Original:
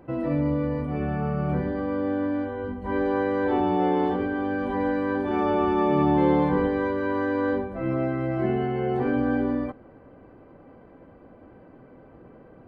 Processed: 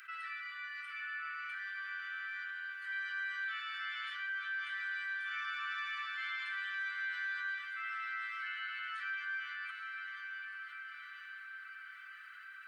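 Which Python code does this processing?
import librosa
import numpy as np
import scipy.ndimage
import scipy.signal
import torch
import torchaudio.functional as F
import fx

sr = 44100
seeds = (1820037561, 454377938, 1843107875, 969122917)

p1 = scipy.signal.sosfilt(scipy.signal.butter(16, 1300.0, 'highpass', fs=sr, output='sos'), x)
p2 = p1 + fx.echo_diffused(p1, sr, ms=902, feedback_pct=43, wet_db=-9, dry=0)
p3 = fx.env_flatten(p2, sr, amount_pct=50)
y = p3 * 10.0 ** (-2.0 / 20.0)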